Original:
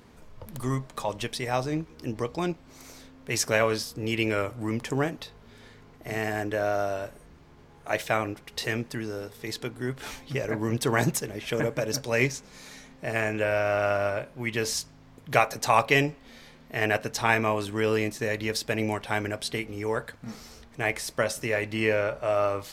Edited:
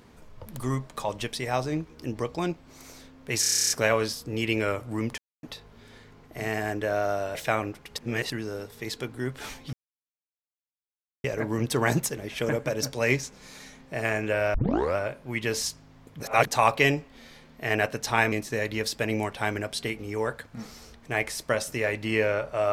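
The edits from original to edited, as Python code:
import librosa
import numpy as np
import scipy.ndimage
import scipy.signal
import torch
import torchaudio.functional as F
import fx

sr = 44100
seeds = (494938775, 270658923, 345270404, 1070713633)

y = fx.edit(x, sr, fx.stutter(start_s=3.4, slice_s=0.03, count=11),
    fx.silence(start_s=4.88, length_s=0.25),
    fx.cut(start_s=7.05, length_s=0.92),
    fx.reverse_span(start_s=8.59, length_s=0.33),
    fx.insert_silence(at_s=10.35, length_s=1.51),
    fx.tape_start(start_s=13.65, length_s=0.42),
    fx.reverse_span(start_s=15.31, length_s=0.27),
    fx.cut(start_s=17.43, length_s=0.58), tone=tone)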